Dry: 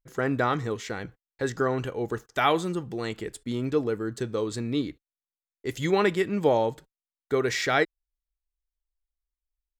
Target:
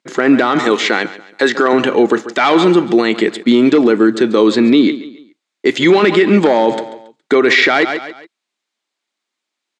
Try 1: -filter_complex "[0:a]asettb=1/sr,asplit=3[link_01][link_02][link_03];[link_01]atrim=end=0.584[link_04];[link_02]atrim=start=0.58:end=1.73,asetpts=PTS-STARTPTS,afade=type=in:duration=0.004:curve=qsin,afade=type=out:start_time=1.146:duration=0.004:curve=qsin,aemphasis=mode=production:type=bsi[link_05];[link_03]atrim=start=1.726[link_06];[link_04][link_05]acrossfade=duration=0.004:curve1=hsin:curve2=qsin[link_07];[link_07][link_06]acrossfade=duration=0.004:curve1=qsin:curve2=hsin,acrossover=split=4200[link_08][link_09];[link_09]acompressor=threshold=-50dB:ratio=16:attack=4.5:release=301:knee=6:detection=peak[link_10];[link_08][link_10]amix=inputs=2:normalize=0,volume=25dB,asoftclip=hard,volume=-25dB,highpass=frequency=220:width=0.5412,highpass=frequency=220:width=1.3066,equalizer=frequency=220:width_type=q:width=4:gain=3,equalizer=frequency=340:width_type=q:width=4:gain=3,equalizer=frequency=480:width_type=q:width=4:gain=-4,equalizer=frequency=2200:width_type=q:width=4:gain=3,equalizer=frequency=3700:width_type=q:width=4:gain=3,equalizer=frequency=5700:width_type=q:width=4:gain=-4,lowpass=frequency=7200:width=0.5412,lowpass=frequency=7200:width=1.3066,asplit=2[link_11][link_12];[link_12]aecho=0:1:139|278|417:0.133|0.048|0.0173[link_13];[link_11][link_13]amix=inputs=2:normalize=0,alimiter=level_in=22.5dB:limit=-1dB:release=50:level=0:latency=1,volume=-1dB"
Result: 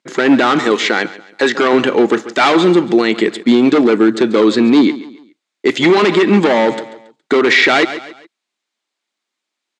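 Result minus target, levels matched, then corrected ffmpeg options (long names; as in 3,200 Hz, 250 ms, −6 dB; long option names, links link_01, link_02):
gain into a clipping stage and back: distortion +9 dB
-filter_complex "[0:a]asettb=1/sr,asplit=3[link_01][link_02][link_03];[link_01]atrim=end=0.584[link_04];[link_02]atrim=start=0.58:end=1.73,asetpts=PTS-STARTPTS,afade=type=in:duration=0.004:curve=qsin,afade=type=out:start_time=1.146:duration=0.004:curve=qsin,aemphasis=mode=production:type=bsi[link_05];[link_03]atrim=start=1.726[link_06];[link_04][link_05]acrossfade=duration=0.004:curve1=hsin:curve2=qsin[link_07];[link_07][link_06]acrossfade=duration=0.004:curve1=qsin:curve2=hsin,acrossover=split=4200[link_08][link_09];[link_09]acompressor=threshold=-50dB:ratio=16:attack=4.5:release=301:knee=6:detection=peak[link_10];[link_08][link_10]amix=inputs=2:normalize=0,volume=17.5dB,asoftclip=hard,volume=-17.5dB,highpass=frequency=220:width=0.5412,highpass=frequency=220:width=1.3066,equalizer=frequency=220:width_type=q:width=4:gain=3,equalizer=frequency=340:width_type=q:width=4:gain=3,equalizer=frequency=480:width_type=q:width=4:gain=-4,equalizer=frequency=2200:width_type=q:width=4:gain=3,equalizer=frequency=3700:width_type=q:width=4:gain=3,equalizer=frequency=5700:width_type=q:width=4:gain=-4,lowpass=frequency=7200:width=0.5412,lowpass=frequency=7200:width=1.3066,asplit=2[link_11][link_12];[link_12]aecho=0:1:139|278|417:0.133|0.048|0.0173[link_13];[link_11][link_13]amix=inputs=2:normalize=0,alimiter=level_in=22.5dB:limit=-1dB:release=50:level=0:latency=1,volume=-1dB"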